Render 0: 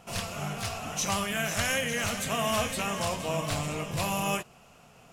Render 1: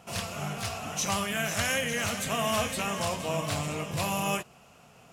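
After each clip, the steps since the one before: HPF 51 Hz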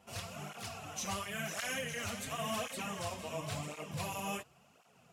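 tape flanging out of phase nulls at 0.93 Hz, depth 7.3 ms; gain -6.5 dB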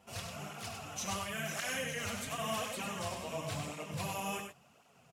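echo 98 ms -6 dB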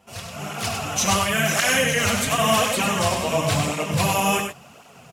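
AGC gain up to 11.5 dB; gain +6 dB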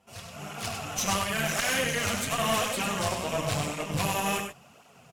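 tube stage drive 14 dB, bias 0.8; gain -3 dB

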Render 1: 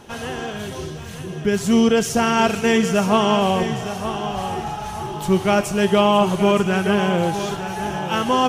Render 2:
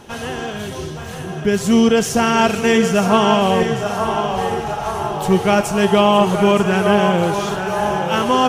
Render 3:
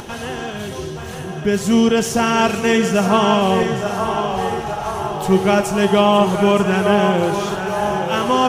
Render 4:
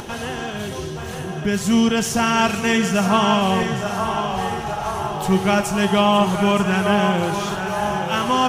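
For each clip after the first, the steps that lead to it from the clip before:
band-limited delay 0.87 s, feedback 63%, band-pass 870 Hz, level -6 dB; gain +2.5 dB
upward compressor, threshold -25 dBFS; on a send at -15 dB: reverb RT60 1.5 s, pre-delay 3 ms; on the sum: gain -1 dB
dynamic EQ 440 Hz, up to -7 dB, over -29 dBFS, Q 1.2

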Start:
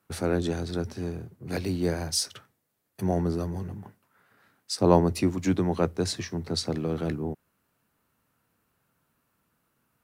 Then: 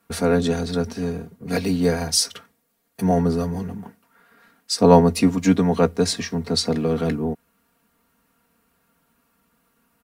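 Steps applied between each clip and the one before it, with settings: comb 4.3 ms, depth 80%; gain +5.5 dB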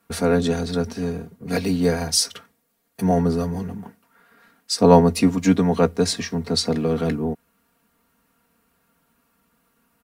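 nothing audible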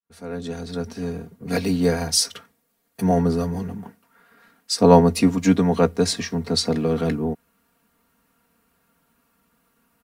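opening faded in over 1.42 s

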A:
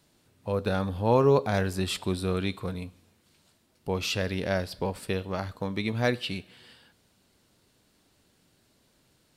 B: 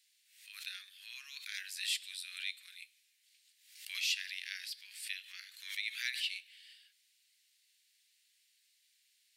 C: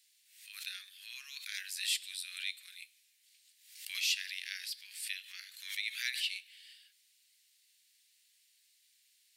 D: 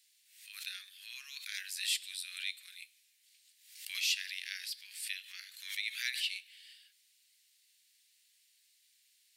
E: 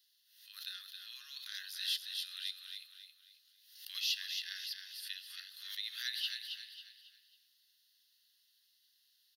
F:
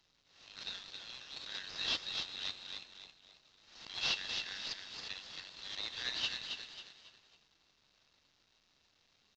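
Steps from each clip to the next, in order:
steep high-pass 1900 Hz 48 dB/oct; backwards sustainer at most 82 dB/s; gain -2.5 dB
high shelf 5400 Hz +5.5 dB
nothing audible
fixed phaser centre 2300 Hz, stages 6; on a send: feedback echo 0.272 s, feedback 37%, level -6.5 dB
CVSD 32 kbps; small resonant body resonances 2700/3800 Hz, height 8 dB

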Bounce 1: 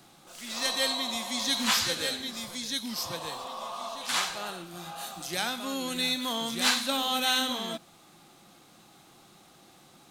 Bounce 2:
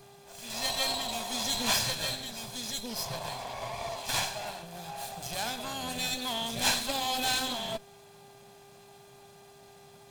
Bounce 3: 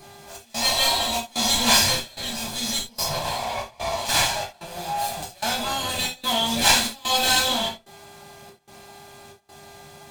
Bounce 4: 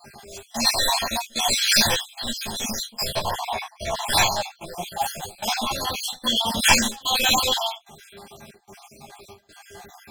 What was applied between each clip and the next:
minimum comb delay 1.2 ms; thirty-one-band EQ 125 Hz +9 dB, 315 Hz -3 dB, 630 Hz +7 dB, 1600 Hz -4 dB; buzz 400 Hz, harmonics 36, -57 dBFS -8 dB/oct
step gate "xxxx..xxx" 166 bpm -24 dB; non-linear reverb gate 0.11 s falling, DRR -3 dB; gain +5.5 dB
random spectral dropouts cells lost 56%; ensemble effect; gain +6.5 dB

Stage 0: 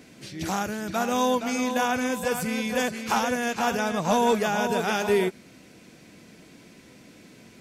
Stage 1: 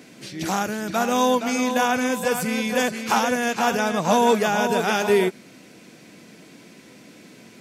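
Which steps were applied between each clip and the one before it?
HPF 140 Hz 12 dB/oct; gain +4 dB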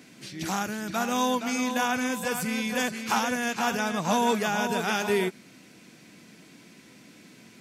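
bell 520 Hz -5.5 dB 1.2 oct; gain -3.5 dB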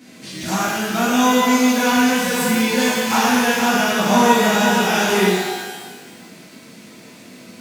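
shimmer reverb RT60 1.3 s, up +12 st, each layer -8 dB, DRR -8.5 dB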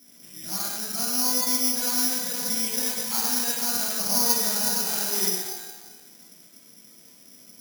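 careless resampling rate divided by 8×, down filtered, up zero stuff; gain -17.5 dB

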